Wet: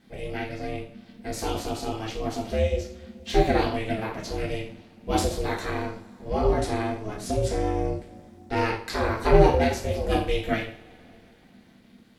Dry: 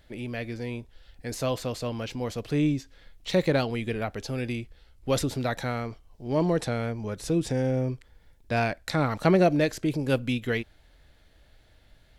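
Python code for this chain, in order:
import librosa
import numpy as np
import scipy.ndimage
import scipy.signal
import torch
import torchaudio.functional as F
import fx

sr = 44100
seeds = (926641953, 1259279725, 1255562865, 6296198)

y = fx.rev_double_slope(x, sr, seeds[0], early_s=0.44, late_s=3.8, knee_db=-28, drr_db=-5.5)
y = y * np.sin(2.0 * np.pi * 220.0 * np.arange(len(y)) / sr)
y = y * 10.0 ** (-2.5 / 20.0)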